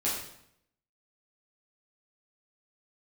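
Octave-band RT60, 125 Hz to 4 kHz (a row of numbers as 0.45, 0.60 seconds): 0.85, 0.80, 0.70, 0.70, 0.65, 0.65 seconds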